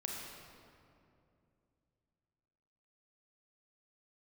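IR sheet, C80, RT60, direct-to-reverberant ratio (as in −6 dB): 1.5 dB, 2.6 s, −1.5 dB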